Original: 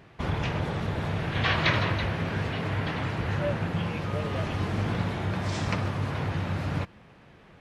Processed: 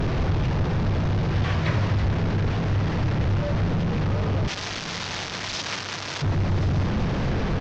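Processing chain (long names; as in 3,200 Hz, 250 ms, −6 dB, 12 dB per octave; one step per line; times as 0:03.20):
linear delta modulator 32 kbit/s, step −19.5 dBFS
spectral tilt −3 dB per octave, from 0:04.47 +3 dB per octave, from 0:06.21 −3 dB per octave
single-tap delay 1,074 ms −17.5 dB
level −4.5 dB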